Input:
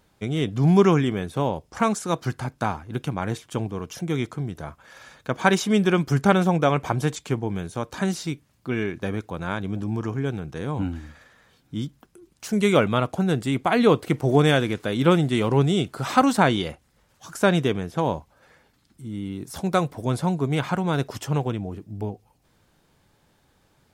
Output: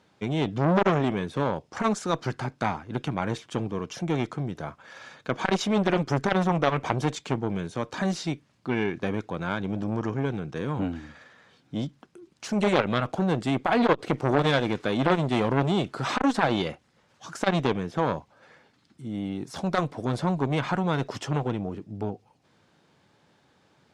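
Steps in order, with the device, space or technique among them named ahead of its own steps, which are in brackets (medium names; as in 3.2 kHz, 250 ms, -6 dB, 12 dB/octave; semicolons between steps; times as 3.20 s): valve radio (band-pass 130–5800 Hz; valve stage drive 6 dB, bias 0.6; transformer saturation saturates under 1.3 kHz); trim +4.5 dB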